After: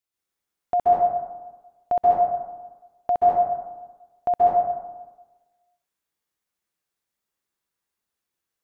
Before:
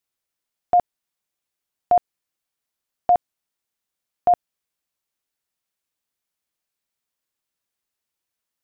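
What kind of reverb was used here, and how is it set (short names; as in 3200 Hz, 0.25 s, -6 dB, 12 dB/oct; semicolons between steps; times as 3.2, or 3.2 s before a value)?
plate-style reverb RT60 1.2 s, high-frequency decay 0.4×, pre-delay 0.12 s, DRR -6.5 dB; gain -6 dB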